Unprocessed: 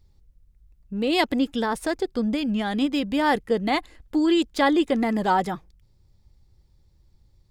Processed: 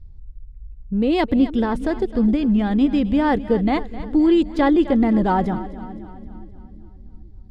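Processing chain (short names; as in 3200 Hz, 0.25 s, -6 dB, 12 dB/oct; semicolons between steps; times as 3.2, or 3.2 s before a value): RIAA curve playback; split-band echo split 360 Hz, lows 0.412 s, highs 0.26 s, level -15 dB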